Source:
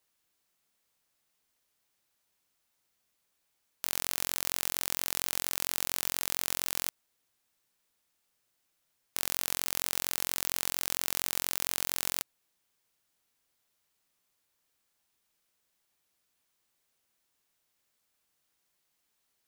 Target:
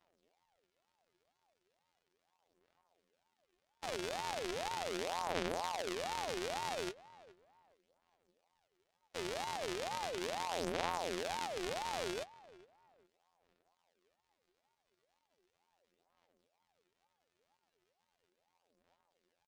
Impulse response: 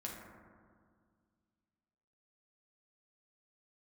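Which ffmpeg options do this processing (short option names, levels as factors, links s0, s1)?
-filter_complex "[0:a]lowpass=6100,bass=f=250:g=13,treble=f=4000:g=-6,aecho=1:1:6:0.65,asplit=2[s0][s1];[s1]alimiter=level_in=1.19:limit=0.0631:level=0:latency=1,volume=0.841,volume=0.794[s2];[s0][s2]amix=inputs=2:normalize=0,aphaser=in_gain=1:out_gain=1:delay=4:decay=0.61:speed=0.37:type=sinusoidal,afftfilt=real='hypot(re,im)*cos(PI*b)':imag='0':win_size=2048:overlap=0.75,asplit=2[s3][s4];[s4]adelay=415,lowpass=f=2200:p=1,volume=0.1,asplit=2[s5][s6];[s6]adelay=415,lowpass=f=2200:p=1,volume=0.31[s7];[s3][s5][s7]amix=inputs=3:normalize=0,aeval=exprs='val(0)*sin(2*PI*640*n/s+640*0.45/2.1*sin(2*PI*2.1*n/s))':c=same,volume=0.708"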